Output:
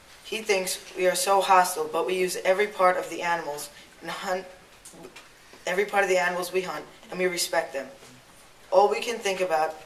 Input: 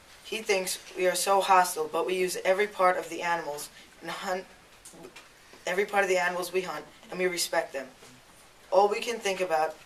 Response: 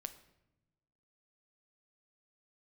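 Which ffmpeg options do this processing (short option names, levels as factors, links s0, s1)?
-filter_complex "[0:a]asplit=2[s0][s1];[1:a]atrim=start_sample=2205,asetrate=41454,aresample=44100[s2];[s1][s2]afir=irnorm=-1:irlink=0,volume=1.41[s3];[s0][s3]amix=inputs=2:normalize=0,volume=0.668"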